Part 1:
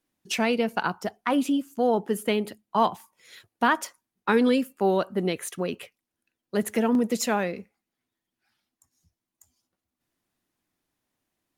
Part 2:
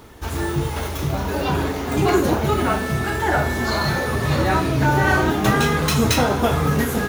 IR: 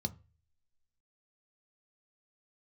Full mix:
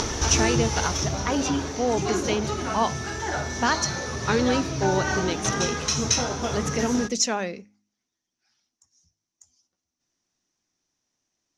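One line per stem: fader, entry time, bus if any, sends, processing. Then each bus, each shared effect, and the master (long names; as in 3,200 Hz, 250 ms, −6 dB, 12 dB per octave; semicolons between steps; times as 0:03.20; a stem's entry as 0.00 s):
−2.0 dB, 0.00 s, no send, no processing
+2.5 dB, 0.00 s, no send, upward compression, threshold −19 dBFS; automatic ducking −12 dB, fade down 1.70 s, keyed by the first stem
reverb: not used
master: low-pass with resonance 5,900 Hz, resonance Q 8.2; hum removal 51.7 Hz, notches 6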